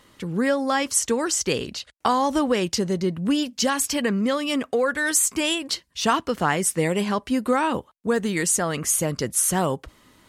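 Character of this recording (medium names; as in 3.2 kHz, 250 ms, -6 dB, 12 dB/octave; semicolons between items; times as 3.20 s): noise floor -60 dBFS; spectral tilt -3.0 dB/octave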